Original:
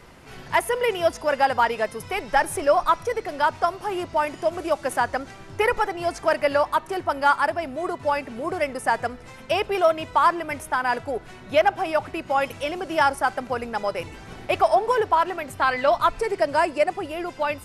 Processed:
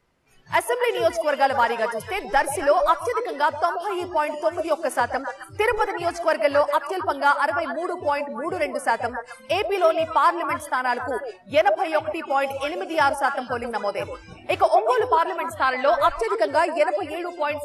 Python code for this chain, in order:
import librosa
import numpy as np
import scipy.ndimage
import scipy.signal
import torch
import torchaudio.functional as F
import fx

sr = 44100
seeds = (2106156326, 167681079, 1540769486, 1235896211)

y = fx.echo_stepped(x, sr, ms=132, hz=520.0, octaves=1.4, feedback_pct=70, wet_db=-5)
y = fx.noise_reduce_blind(y, sr, reduce_db=20)